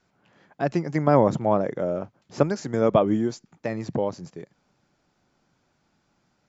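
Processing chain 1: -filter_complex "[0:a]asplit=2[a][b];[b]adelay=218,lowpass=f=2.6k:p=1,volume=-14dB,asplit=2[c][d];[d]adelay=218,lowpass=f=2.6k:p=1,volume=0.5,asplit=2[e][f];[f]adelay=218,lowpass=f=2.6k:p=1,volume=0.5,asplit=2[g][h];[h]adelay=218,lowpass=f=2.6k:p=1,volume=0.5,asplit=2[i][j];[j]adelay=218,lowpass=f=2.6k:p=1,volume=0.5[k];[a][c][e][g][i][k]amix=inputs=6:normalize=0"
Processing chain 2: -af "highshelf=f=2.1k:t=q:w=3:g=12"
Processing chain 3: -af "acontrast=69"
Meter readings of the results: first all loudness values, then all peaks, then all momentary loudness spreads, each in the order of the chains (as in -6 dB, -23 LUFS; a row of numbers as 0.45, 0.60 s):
-24.0, -24.5, -19.0 LUFS; -4.0, -4.0, -2.0 dBFS; 13, 13, 14 LU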